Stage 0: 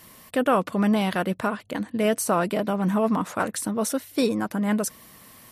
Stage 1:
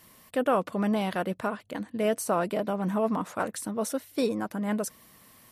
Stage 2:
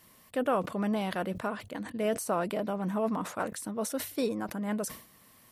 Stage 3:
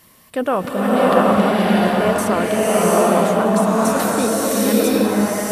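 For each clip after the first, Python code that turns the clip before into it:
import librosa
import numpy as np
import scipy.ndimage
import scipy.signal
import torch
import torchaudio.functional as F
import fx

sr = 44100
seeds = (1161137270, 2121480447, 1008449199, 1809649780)

y1 = fx.dynamic_eq(x, sr, hz=580.0, q=0.85, threshold_db=-31.0, ratio=4.0, max_db=4)
y1 = F.gain(torch.from_numpy(y1), -6.5).numpy()
y2 = fx.sustainer(y1, sr, db_per_s=110.0)
y2 = F.gain(torch.from_numpy(y2), -3.5).numpy()
y3 = fx.rev_bloom(y2, sr, seeds[0], attack_ms=740, drr_db=-7.5)
y3 = F.gain(torch.from_numpy(y3), 8.5).numpy()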